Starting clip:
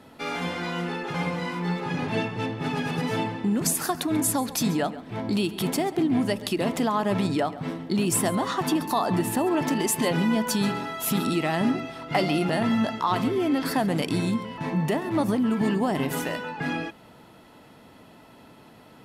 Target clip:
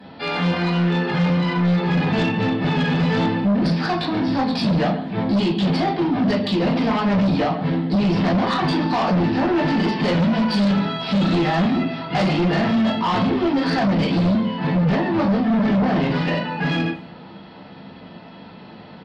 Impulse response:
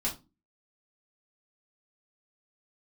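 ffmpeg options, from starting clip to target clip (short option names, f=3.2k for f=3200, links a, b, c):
-filter_complex "[0:a]aresample=11025,asoftclip=type=hard:threshold=-22.5dB,aresample=44100,highpass=77,asplit=2[a][b];[b]adelay=220,highpass=300,lowpass=3.4k,asoftclip=type=hard:threshold=-27dB,volume=-27dB[c];[a][c]amix=inputs=2:normalize=0[d];[1:a]atrim=start_sample=2205,asetrate=35280,aresample=44100[e];[d][e]afir=irnorm=-1:irlink=0,asplit=2[f][g];[g]aeval=exprs='0.596*sin(PI/2*3.55*val(0)/0.596)':c=same,volume=-10dB[h];[f][h]amix=inputs=2:normalize=0,volume=-6.5dB"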